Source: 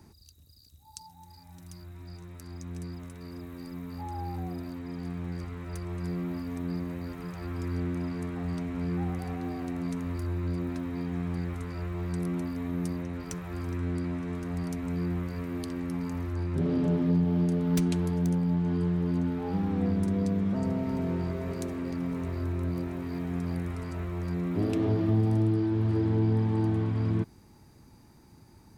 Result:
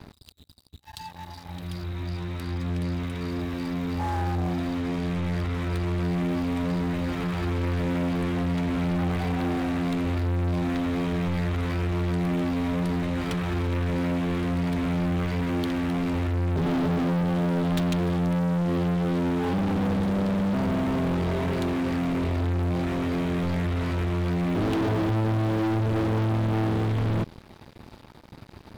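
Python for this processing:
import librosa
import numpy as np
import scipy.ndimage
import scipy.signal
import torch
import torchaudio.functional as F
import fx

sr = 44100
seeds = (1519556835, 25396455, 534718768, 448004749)

y = fx.high_shelf_res(x, sr, hz=4700.0, db=-10.0, q=3.0)
y = fx.leveller(y, sr, passes=5)
y = y * librosa.db_to_amplitude(-5.5)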